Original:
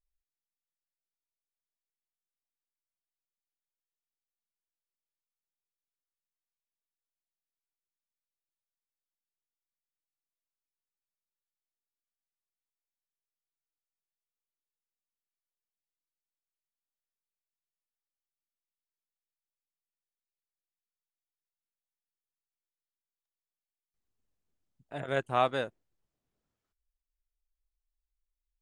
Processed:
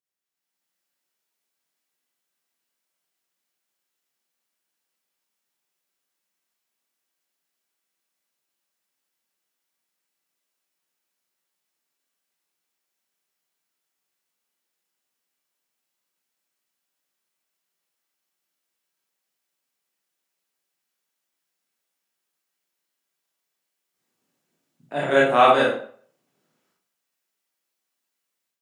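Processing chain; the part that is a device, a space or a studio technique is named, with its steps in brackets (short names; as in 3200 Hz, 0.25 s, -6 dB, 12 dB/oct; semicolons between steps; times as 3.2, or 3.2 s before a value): far laptop microphone (reverb RT60 0.50 s, pre-delay 23 ms, DRR -5.5 dB; HPF 170 Hz 24 dB/oct; AGC gain up to 10 dB)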